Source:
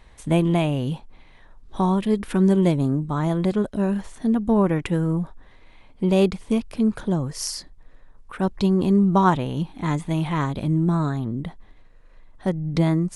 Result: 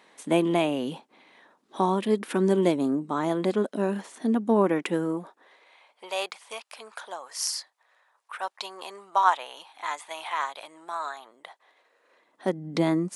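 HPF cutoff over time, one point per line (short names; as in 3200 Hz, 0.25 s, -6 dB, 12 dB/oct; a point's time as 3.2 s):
HPF 24 dB/oct
5.02 s 240 Hz
6.09 s 710 Hz
11.36 s 710 Hz
12.58 s 220 Hz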